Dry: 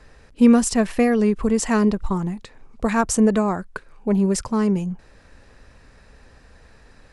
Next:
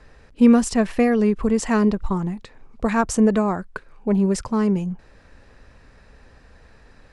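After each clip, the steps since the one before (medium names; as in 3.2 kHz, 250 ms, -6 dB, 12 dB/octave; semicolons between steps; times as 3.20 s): treble shelf 7 kHz -8.5 dB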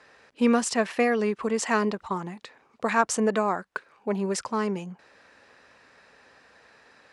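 frequency weighting A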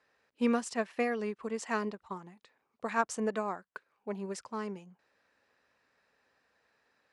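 upward expansion 1.5:1, over -39 dBFS; trim -6.5 dB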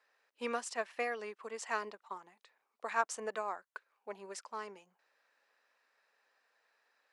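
high-pass 560 Hz 12 dB/octave; trim -1.5 dB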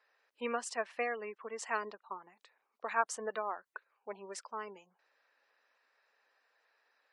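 spectral gate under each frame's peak -25 dB strong; trim +1 dB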